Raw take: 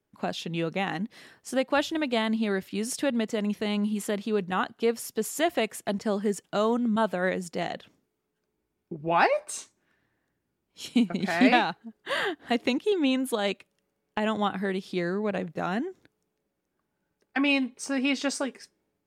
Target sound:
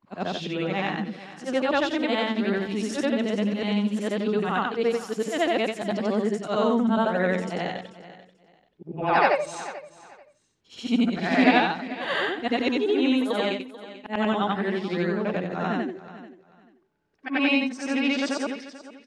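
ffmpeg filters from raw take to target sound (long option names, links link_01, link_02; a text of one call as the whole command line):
ffmpeg -i in.wav -af "afftfilt=real='re':imag='-im':win_size=8192:overlap=0.75,lowpass=5100,aecho=1:1:438|876:0.158|0.0349,volume=7dB" out.wav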